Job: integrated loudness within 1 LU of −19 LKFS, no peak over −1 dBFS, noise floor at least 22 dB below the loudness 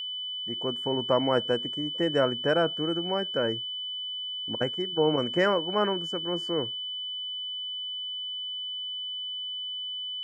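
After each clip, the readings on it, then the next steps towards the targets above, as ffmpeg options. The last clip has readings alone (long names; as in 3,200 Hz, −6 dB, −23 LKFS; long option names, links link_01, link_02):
interfering tone 3,000 Hz; level of the tone −32 dBFS; integrated loudness −28.5 LKFS; sample peak −11.0 dBFS; target loudness −19.0 LKFS
→ -af "bandreject=frequency=3000:width=30"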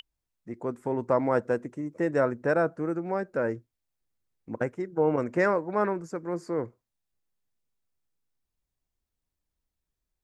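interfering tone none found; integrated loudness −28.5 LKFS; sample peak −11.0 dBFS; target loudness −19.0 LKFS
→ -af "volume=9.5dB"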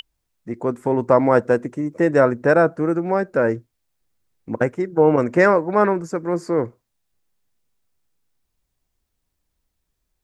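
integrated loudness −19.0 LKFS; sample peak −1.5 dBFS; background noise floor −76 dBFS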